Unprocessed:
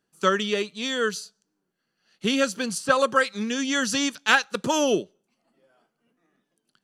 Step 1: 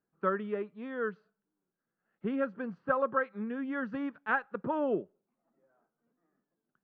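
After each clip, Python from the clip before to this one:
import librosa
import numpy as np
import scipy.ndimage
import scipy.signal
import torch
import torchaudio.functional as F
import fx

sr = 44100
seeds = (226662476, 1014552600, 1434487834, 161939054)

y = scipy.signal.sosfilt(scipy.signal.butter(4, 1600.0, 'lowpass', fs=sr, output='sos'), x)
y = y * 10.0 ** (-8.0 / 20.0)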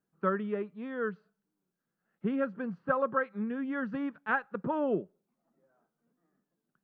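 y = fx.peak_eq(x, sr, hz=170.0, db=5.5, octaves=0.77)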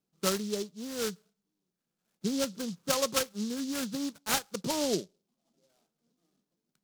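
y = fx.noise_mod_delay(x, sr, seeds[0], noise_hz=4800.0, depth_ms=0.14)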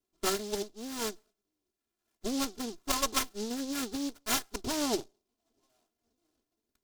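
y = fx.lower_of_two(x, sr, delay_ms=2.9)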